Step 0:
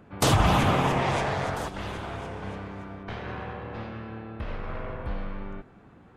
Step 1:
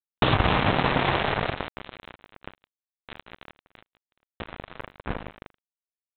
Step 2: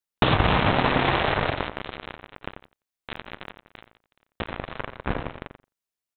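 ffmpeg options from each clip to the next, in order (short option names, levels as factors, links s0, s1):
-af "acompressor=threshold=0.0631:ratio=6,aresample=8000,acrusher=bits=3:mix=0:aa=0.5,aresample=44100,volume=2.11"
-filter_complex "[0:a]acompressor=threshold=0.0316:ratio=1.5,asplit=2[s0][s1];[s1]adelay=89,lowpass=f=1700:p=1,volume=0.376,asplit=2[s2][s3];[s3]adelay=89,lowpass=f=1700:p=1,volume=0.16[s4];[s0][s2][s4]amix=inputs=3:normalize=0,volume=2"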